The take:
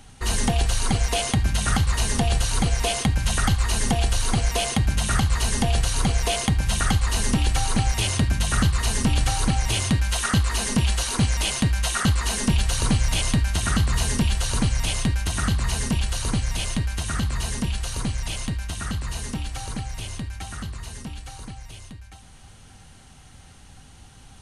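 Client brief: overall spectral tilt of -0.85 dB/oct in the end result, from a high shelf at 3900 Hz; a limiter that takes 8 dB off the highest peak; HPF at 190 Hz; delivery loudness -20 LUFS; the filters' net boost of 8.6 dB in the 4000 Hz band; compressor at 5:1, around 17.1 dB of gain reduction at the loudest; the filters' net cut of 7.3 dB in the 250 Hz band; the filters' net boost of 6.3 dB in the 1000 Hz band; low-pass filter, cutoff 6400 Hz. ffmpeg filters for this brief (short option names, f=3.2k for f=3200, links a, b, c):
-af "highpass=190,lowpass=6.4k,equalizer=f=250:t=o:g=-7,equalizer=f=1k:t=o:g=8,highshelf=f=3.9k:g=8.5,equalizer=f=4k:t=o:g=6,acompressor=threshold=-36dB:ratio=5,volume=18dB,alimiter=limit=-10dB:level=0:latency=1"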